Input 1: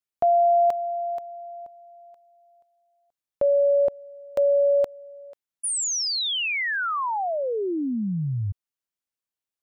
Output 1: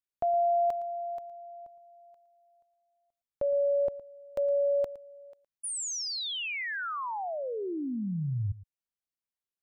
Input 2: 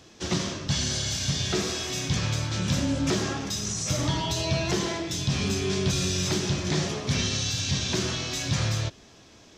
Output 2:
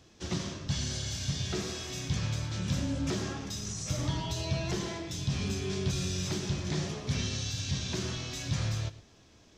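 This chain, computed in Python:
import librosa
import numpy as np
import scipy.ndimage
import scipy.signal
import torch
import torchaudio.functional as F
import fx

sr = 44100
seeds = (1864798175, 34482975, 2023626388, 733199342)

p1 = fx.low_shelf(x, sr, hz=120.0, db=8.5)
p2 = p1 + fx.echo_single(p1, sr, ms=113, db=-17.0, dry=0)
y = p2 * librosa.db_to_amplitude(-8.5)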